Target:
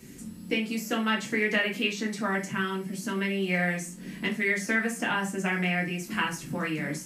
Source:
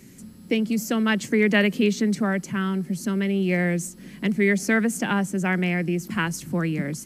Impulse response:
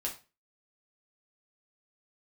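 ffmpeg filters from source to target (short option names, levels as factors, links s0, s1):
-filter_complex "[0:a]acrossover=split=650|3100[s0][s1][s2];[s0]acompressor=threshold=0.0224:ratio=4[s3];[s1]acompressor=threshold=0.0501:ratio=4[s4];[s2]acompressor=threshold=0.00891:ratio=4[s5];[s3][s4][s5]amix=inputs=3:normalize=0[s6];[1:a]atrim=start_sample=2205[s7];[s6][s7]afir=irnorm=-1:irlink=0"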